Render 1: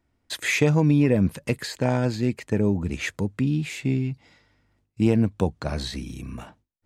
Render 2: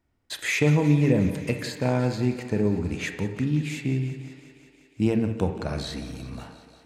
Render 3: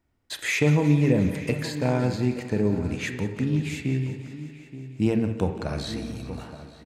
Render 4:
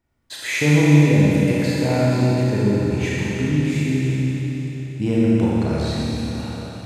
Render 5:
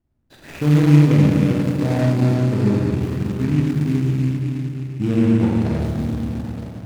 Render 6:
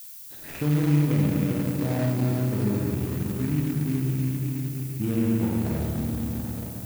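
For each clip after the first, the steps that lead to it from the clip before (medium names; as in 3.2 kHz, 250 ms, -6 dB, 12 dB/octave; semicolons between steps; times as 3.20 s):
thinning echo 178 ms, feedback 76%, high-pass 170 Hz, level -15 dB; on a send at -7 dB: reverberation RT60 0.85 s, pre-delay 26 ms; on the sum: trim -2.5 dB
echo from a far wall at 150 m, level -13 dB
Schroeder reverb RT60 3.4 s, combs from 27 ms, DRR -6 dB; trim -1 dB
median filter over 41 samples; peaking EQ 470 Hz -4.5 dB 0.71 oct; trim +2 dB
compression 1.5:1, threshold -24 dBFS, peak gain reduction 6.5 dB; added noise violet -39 dBFS; trim -3.5 dB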